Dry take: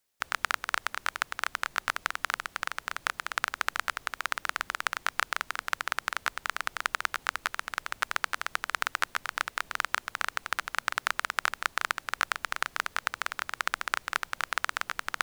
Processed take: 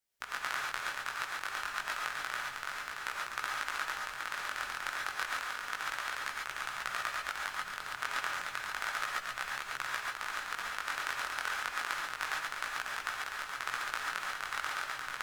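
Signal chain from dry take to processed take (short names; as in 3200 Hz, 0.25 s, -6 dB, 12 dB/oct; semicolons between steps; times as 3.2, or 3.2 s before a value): chorus voices 2, 0.31 Hz, delay 19 ms, depth 4.6 ms; non-linear reverb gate 0.16 s rising, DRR -2 dB; gain -5.5 dB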